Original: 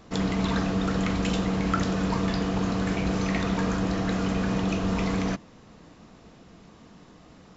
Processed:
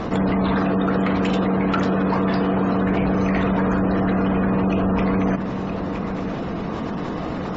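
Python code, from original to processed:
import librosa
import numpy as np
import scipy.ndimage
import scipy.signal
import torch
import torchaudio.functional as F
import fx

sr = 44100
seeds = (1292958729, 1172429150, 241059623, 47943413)

y = fx.low_shelf(x, sr, hz=82.0, db=-12.0, at=(0.55, 2.82), fade=0.02)
y = 10.0 ** (-20.5 / 20.0) * (np.abs((y / 10.0 ** (-20.5 / 20.0) + 3.0) % 4.0 - 2.0) - 1.0)
y = fx.spec_gate(y, sr, threshold_db=-30, keep='strong')
y = fx.lowpass(y, sr, hz=1300.0, slope=6)
y = fx.low_shelf(y, sr, hz=170.0, db=-7.0)
y = y + 10.0 ** (-23.5 / 20.0) * np.pad(y, (int(968 * sr / 1000.0), 0))[:len(y)]
y = fx.env_flatten(y, sr, amount_pct=70)
y = F.gain(torch.from_numpy(y), 8.5).numpy()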